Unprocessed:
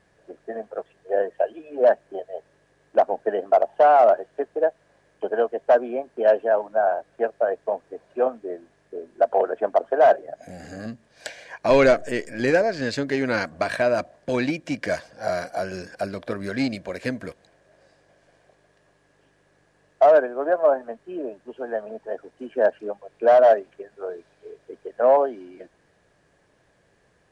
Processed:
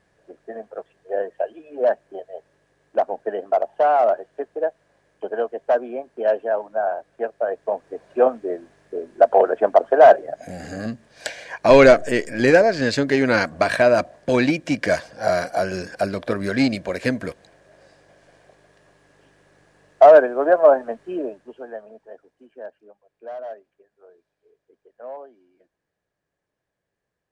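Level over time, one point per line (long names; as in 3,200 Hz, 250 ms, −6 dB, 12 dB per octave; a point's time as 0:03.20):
0:07.36 −2 dB
0:08.09 +5.5 dB
0:21.13 +5.5 dB
0:21.73 −6.5 dB
0:22.82 −19 dB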